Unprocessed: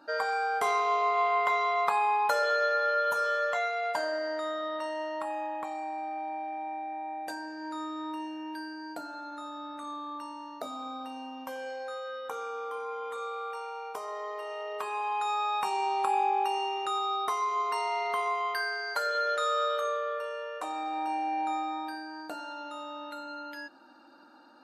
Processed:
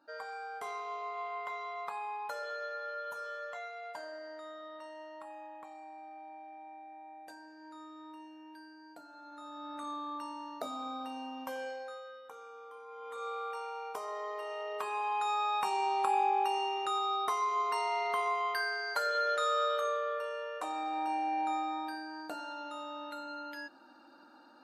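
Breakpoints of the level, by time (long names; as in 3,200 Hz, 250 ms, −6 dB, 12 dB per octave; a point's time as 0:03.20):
0:09.07 −13 dB
0:09.79 −1 dB
0:11.62 −1 dB
0:12.26 −13 dB
0:12.86 −13 dB
0:13.28 −2 dB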